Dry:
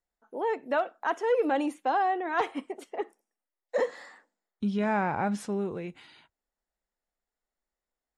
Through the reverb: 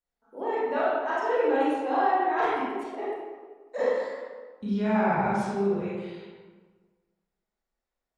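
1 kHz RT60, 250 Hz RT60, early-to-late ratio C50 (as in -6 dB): 1.4 s, 1.6 s, -3.5 dB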